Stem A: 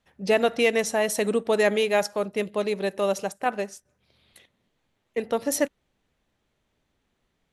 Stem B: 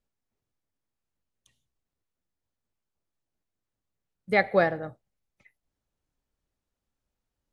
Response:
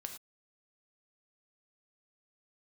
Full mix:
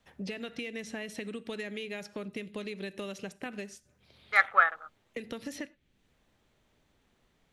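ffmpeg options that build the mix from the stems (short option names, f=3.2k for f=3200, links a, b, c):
-filter_complex "[0:a]acrossover=split=390|1700|3500[a][b][c][d];[a]acompressor=threshold=-35dB:ratio=4[e];[b]acompressor=threshold=-54dB:ratio=4[f];[c]acompressor=threshold=-35dB:ratio=4[g];[d]acompressor=threshold=-54dB:ratio=4[h];[e][f][g][h]amix=inputs=4:normalize=0,equalizer=f=11k:w=6.4:g=-3.5,acompressor=threshold=-39dB:ratio=6,volume=2dB,asplit=2[i][j];[j]volume=-10dB[k];[1:a]afwtdn=0.0126,highpass=f=1.3k:t=q:w=8,tremolo=f=0.89:d=0.91,volume=-2.5dB[l];[2:a]atrim=start_sample=2205[m];[k][m]afir=irnorm=-1:irlink=0[n];[i][l][n]amix=inputs=3:normalize=0"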